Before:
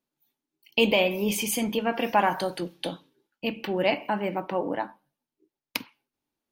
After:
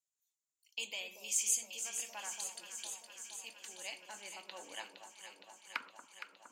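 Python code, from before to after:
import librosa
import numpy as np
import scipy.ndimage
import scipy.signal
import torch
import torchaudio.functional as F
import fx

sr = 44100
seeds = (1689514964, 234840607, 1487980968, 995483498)

y = fx.filter_sweep_bandpass(x, sr, from_hz=7200.0, to_hz=990.0, start_s=3.79, end_s=6.23, q=6.5)
y = fx.echo_alternate(y, sr, ms=232, hz=1100.0, feedback_pct=86, wet_db=-7)
y = F.gain(torch.from_numpy(y), 8.0).numpy()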